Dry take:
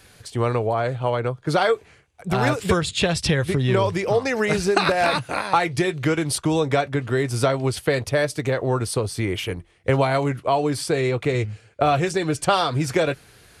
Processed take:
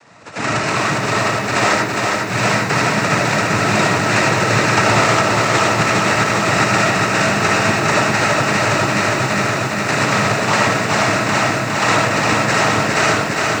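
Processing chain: bit-reversed sample order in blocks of 256 samples; in parallel at -1 dB: compression, threshold -28 dBFS, peak gain reduction 14 dB; on the sum: sample-rate reducer 3.7 kHz, jitter 0%; noise-vocoded speech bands 12; algorithmic reverb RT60 0.58 s, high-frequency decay 0.3×, pre-delay 35 ms, DRR -1.5 dB; bit-crushed delay 409 ms, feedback 80%, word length 7-bit, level -3.5 dB; trim -1.5 dB

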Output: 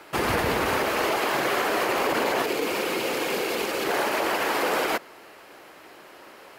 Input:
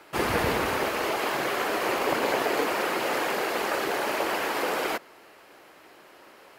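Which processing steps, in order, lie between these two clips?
peak limiter -19.5 dBFS, peak gain reduction 8 dB; time-frequency box 2.44–3.85 s, 550–2100 Hz -6 dB; trim +4.5 dB

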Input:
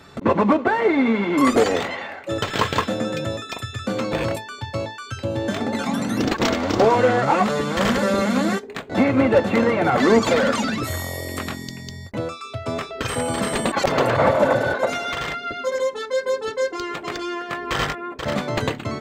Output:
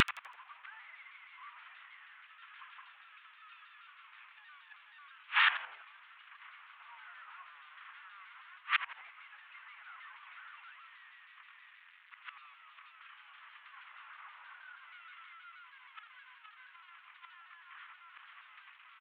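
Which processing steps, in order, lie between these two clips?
one-bit delta coder 16 kbps, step -23 dBFS; steep high-pass 1.1 kHz 48 dB/octave; in parallel at -1 dB: peak limiter -22 dBFS, peak gain reduction 8 dB; on the sum: inverted gate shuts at -20 dBFS, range -35 dB; on a send: frequency-shifting echo 83 ms, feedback 41%, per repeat -120 Hz, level -12 dB; on the sum: vibrato with a chosen wave saw down 6.3 Hz, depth 100 cents; trim +5 dB

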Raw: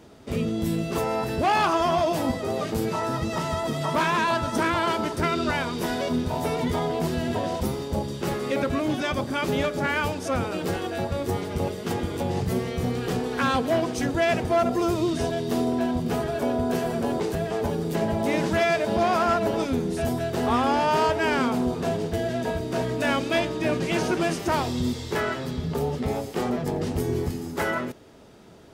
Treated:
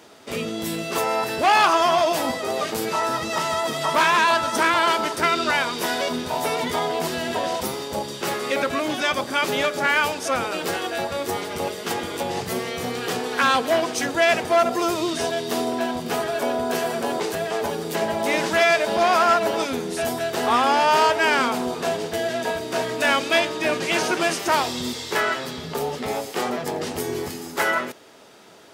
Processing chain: high-pass 900 Hz 6 dB/octave; trim +8 dB

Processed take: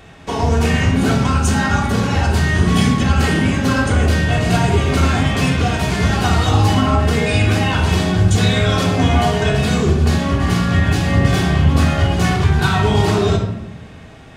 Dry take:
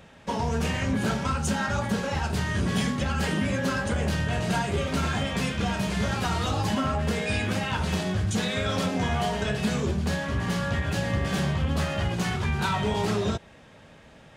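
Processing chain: simulated room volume 3100 m³, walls furnished, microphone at 3.4 m; trim +7 dB

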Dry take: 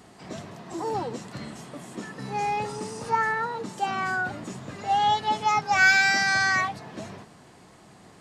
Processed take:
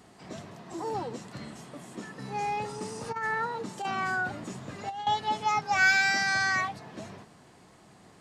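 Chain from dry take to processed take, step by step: 2.81–5.07 s: compressor with a negative ratio -26 dBFS, ratio -0.5; trim -4 dB

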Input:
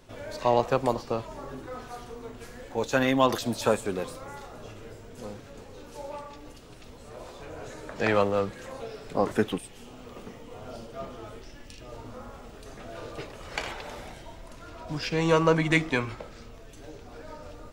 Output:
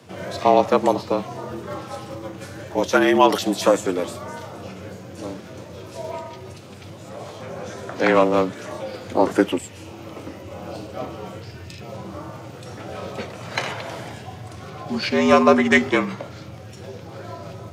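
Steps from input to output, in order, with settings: frequency shift +82 Hz; formant shift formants -2 st; trim +7.5 dB

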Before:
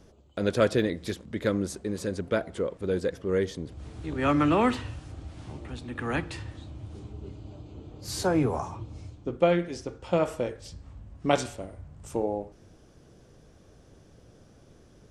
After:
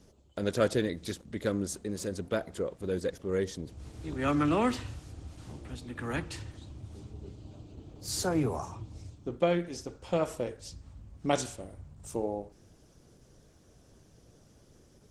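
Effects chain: tone controls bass +1 dB, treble +8 dB; trim -4 dB; Opus 16 kbps 48 kHz

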